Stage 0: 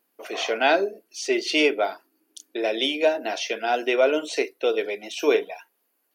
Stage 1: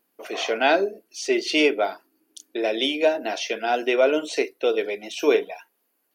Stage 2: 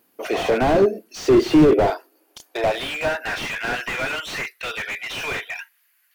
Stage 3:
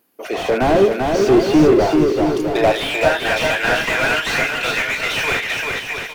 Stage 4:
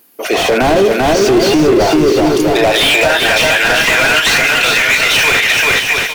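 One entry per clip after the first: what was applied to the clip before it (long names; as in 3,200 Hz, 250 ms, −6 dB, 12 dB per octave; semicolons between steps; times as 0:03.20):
low-shelf EQ 180 Hz +7.5 dB
high-pass filter sweep 90 Hz → 1,800 Hz, 0:00.31–0:03.45; slew-rate limiting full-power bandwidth 42 Hz; level +8.5 dB
automatic gain control gain up to 7.5 dB; on a send: bouncing-ball delay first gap 390 ms, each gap 0.7×, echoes 5; on the sum: level −1 dB
high-shelf EQ 2,600 Hz +8 dB; boost into a limiter +9.5 dB; level −1 dB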